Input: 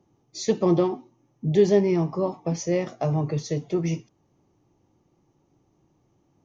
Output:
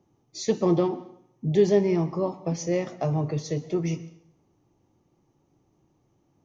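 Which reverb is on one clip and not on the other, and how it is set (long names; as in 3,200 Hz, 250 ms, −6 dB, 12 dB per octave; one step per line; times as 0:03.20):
dense smooth reverb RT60 0.7 s, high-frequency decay 0.9×, pre-delay 110 ms, DRR 17.5 dB
level −1.5 dB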